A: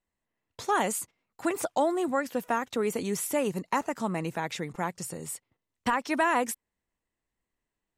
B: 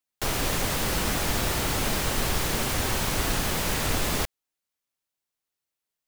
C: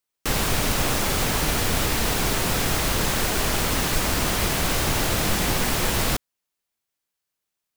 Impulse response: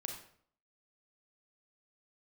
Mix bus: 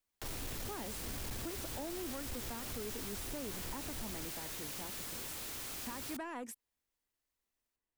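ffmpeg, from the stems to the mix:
-filter_complex "[0:a]volume=-8.5dB,asplit=2[link_01][link_02];[1:a]alimiter=limit=-22.5dB:level=0:latency=1,volume=-5dB[link_03];[2:a]aeval=exprs='(mod(14.1*val(0)+1,2)-1)/14.1':channel_layout=same,volume=-7dB[link_04];[link_02]apad=whole_len=267866[link_05];[link_03][link_05]sidechaincompress=threshold=-44dB:ratio=8:attack=16:release=112[link_06];[link_01][link_06][link_04]amix=inputs=3:normalize=0,equalizer=frequency=170:width_type=o:width=0.45:gain=-8,acrossover=split=370[link_07][link_08];[link_08]acompressor=threshold=-42dB:ratio=4[link_09];[link_07][link_09]amix=inputs=2:normalize=0,asoftclip=type=tanh:threshold=-35.5dB"

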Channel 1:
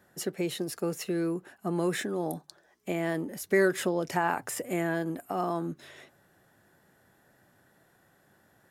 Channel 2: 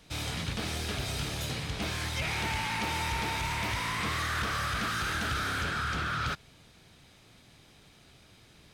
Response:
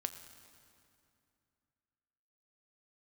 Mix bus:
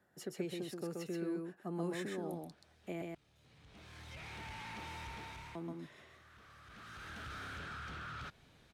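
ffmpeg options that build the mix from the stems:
-filter_complex "[0:a]acrossover=split=350|3000[link_01][link_02][link_03];[link_02]acompressor=threshold=-32dB:ratio=6[link_04];[link_01][link_04][link_03]amix=inputs=3:normalize=0,volume=-10dB,asplit=3[link_05][link_06][link_07];[link_05]atrim=end=3.02,asetpts=PTS-STARTPTS,afade=type=out:start_time=3.016:duration=0.004:curve=hsin[link_08];[link_06]atrim=start=3.02:end=5.55,asetpts=PTS-STARTPTS,volume=0[link_09];[link_07]atrim=start=5.55,asetpts=PTS-STARTPTS,afade=type=in:duration=0.004:curve=hsin[link_10];[link_08][link_09][link_10]concat=n=3:v=0:a=1,asplit=3[link_11][link_12][link_13];[link_12]volume=-3dB[link_14];[1:a]asoftclip=type=tanh:threshold=-29.5dB,bandreject=frequency=4900:width=25,acompressor=threshold=-39dB:ratio=2,adelay=1950,volume=3dB,afade=type=in:start_time=3.35:duration=0.76:silence=0.281838,afade=type=out:start_time=5.07:duration=0.71:silence=0.316228,afade=type=in:start_time=6.65:duration=0.71:silence=0.298538[link_15];[link_13]apad=whole_len=471160[link_16];[link_15][link_16]sidechaincompress=threshold=-51dB:ratio=8:attack=11:release=1430[link_17];[link_14]aecho=0:1:129:1[link_18];[link_11][link_17][link_18]amix=inputs=3:normalize=0,highshelf=frequency=6000:gain=-8.5"

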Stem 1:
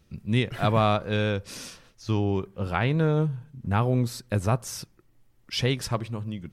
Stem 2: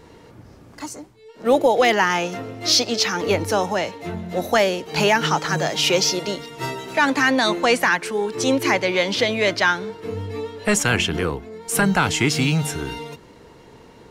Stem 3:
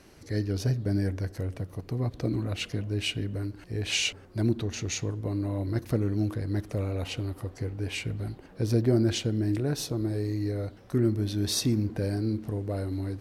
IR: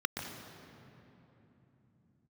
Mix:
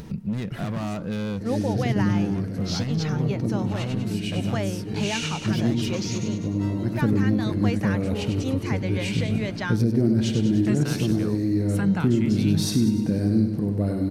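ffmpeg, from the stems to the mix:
-filter_complex "[0:a]volume=27dB,asoftclip=hard,volume=-27dB,volume=-6.5dB,asplit=2[link_01][link_02];[1:a]agate=range=-10dB:threshold=-44dB:ratio=16:detection=peak,highshelf=frequency=11000:gain=-10.5,volume=-15dB[link_03];[2:a]adelay=1100,volume=0.5dB,asplit=2[link_04][link_05];[link_05]volume=-6.5dB[link_06];[link_02]apad=whole_len=630905[link_07];[link_04][link_07]sidechaincompress=threshold=-56dB:ratio=8:attack=45:release=503[link_08];[link_06]aecho=0:1:99|198|297|396|495|594|693|792|891:1|0.57|0.325|0.185|0.106|0.0602|0.0343|0.0195|0.0111[link_09];[link_01][link_03][link_08][link_09]amix=inputs=4:normalize=0,equalizer=frequency=190:width_type=o:width=1.1:gain=14,acompressor=mode=upward:threshold=-23dB:ratio=2.5,alimiter=limit=-11dB:level=0:latency=1:release=342"

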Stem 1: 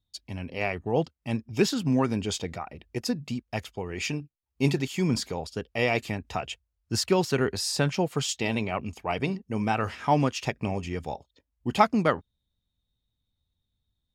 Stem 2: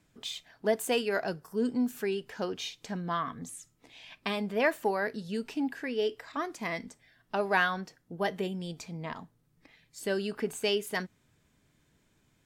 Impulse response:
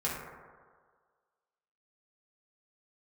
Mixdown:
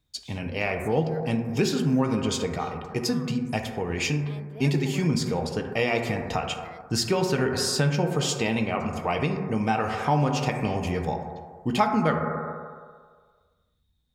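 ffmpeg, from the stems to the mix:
-filter_complex "[0:a]volume=1.5dB,asplit=2[link_01][link_02];[link_02]volume=-6dB[link_03];[1:a]volume=-13dB[link_04];[2:a]atrim=start_sample=2205[link_05];[link_03][link_05]afir=irnorm=-1:irlink=0[link_06];[link_01][link_04][link_06]amix=inputs=3:normalize=0,acompressor=threshold=-24dB:ratio=2"

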